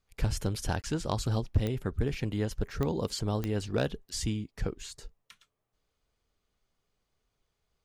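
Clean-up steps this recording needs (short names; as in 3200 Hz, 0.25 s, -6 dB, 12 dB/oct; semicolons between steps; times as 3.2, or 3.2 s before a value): clip repair -17.5 dBFS; de-click; interpolate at 0.82, 18 ms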